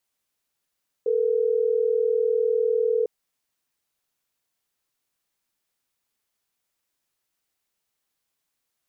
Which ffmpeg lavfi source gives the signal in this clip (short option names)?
-f lavfi -i "aevalsrc='0.0794*(sin(2*PI*440*t)+sin(2*PI*480*t))*clip(min(mod(t,6),2-mod(t,6))/0.005,0,1)':d=3.12:s=44100"